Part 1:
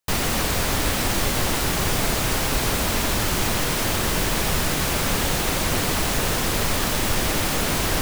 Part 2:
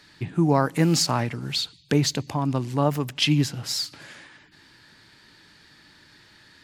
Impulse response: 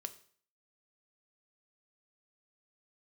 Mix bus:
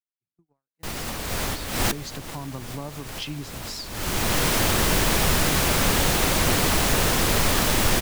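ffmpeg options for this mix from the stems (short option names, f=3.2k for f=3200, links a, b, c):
-filter_complex "[0:a]acompressor=mode=upward:threshold=-26dB:ratio=2.5,adelay=750,volume=1.5dB[a];[1:a]acompressor=threshold=-22dB:ratio=12,volume=-8dB,afade=t=in:st=1.44:d=0.77:silence=0.281838,asplit=3[b][c][d];[c]volume=-22.5dB[e];[d]apad=whole_len=386475[f];[a][f]sidechaincompress=threshold=-53dB:ratio=12:attack=28:release=247[g];[2:a]atrim=start_sample=2205[h];[e][h]afir=irnorm=-1:irlink=0[i];[g][b][i]amix=inputs=3:normalize=0,agate=range=-46dB:threshold=-39dB:ratio=16:detection=peak"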